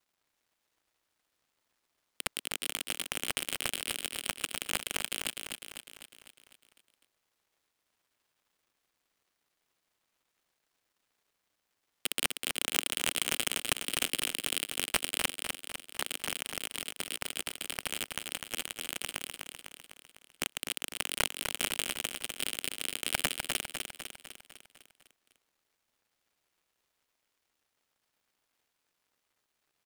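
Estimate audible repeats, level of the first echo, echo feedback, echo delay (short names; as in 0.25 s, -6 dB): 6, -5.5 dB, 56%, 0.251 s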